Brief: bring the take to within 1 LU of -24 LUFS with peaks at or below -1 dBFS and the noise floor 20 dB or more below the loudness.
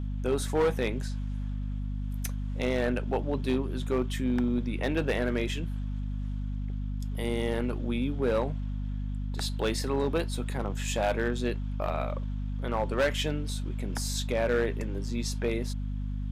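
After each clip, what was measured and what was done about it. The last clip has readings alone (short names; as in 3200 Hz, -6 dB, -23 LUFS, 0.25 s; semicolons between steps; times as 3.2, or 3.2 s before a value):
clipped 0.9%; flat tops at -20.0 dBFS; hum 50 Hz; harmonics up to 250 Hz; hum level -30 dBFS; loudness -31.0 LUFS; peak -20.0 dBFS; loudness target -24.0 LUFS
-> clip repair -20 dBFS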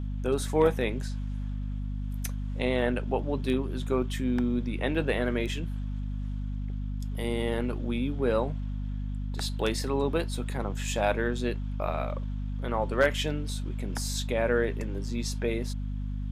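clipped 0.0%; hum 50 Hz; harmonics up to 250 Hz; hum level -30 dBFS
-> notches 50/100/150/200/250 Hz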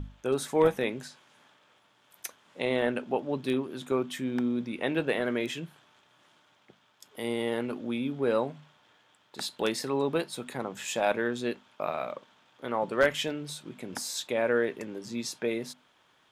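hum none; loudness -30.5 LUFS; peak -10.5 dBFS; loudness target -24.0 LUFS
-> gain +6.5 dB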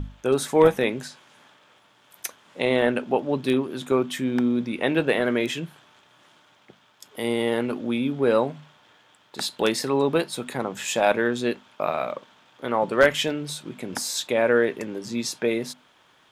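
loudness -24.0 LUFS; peak -4.0 dBFS; noise floor -59 dBFS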